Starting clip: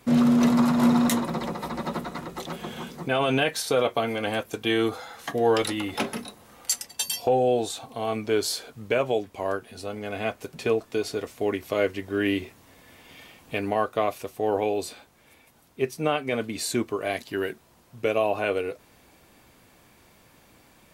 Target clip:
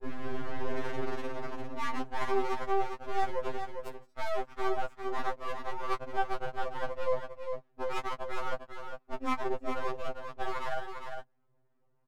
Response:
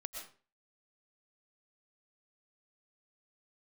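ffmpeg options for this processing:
-filter_complex "[0:a]afwtdn=0.0224,equalizer=f=3400:w=0.52:g=-13.5,areverse,acompressor=threshold=0.0355:ratio=12,areverse,acrossover=split=410[s0][s1];[s0]aeval=exprs='val(0)*(1-0.5/2+0.5/2*cos(2*PI*1.7*n/s))':c=same[s2];[s1]aeval=exprs='val(0)*(1-0.5/2-0.5/2*cos(2*PI*1.7*n/s))':c=same[s3];[s2][s3]amix=inputs=2:normalize=0,adynamicsmooth=sensitivity=4:basefreq=650,aeval=exprs='max(val(0),0)':c=same,aecho=1:1:699:0.473,asetrate=76440,aresample=44100,afftfilt=real='re*2.45*eq(mod(b,6),0)':imag='im*2.45*eq(mod(b,6),0)':win_size=2048:overlap=0.75,volume=2.37"

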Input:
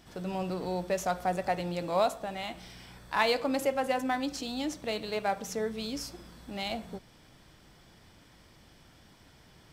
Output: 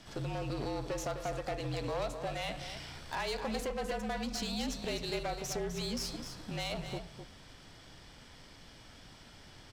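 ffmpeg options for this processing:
-filter_complex "[0:a]lowpass=5200,aemphasis=mode=production:type=50fm,acompressor=threshold=0.0178:ratio=5,aeval=exprs='(tanh(63.1*val(0)+0.6)-tanh(0.6))/63.1':c=same,afreqshift=-44,asplit=2[s0][s1];[s1]aecho=0:1:255:0.355[s2];[s0][s2]amix=inputs=2:normalize=0,volume=1.88"

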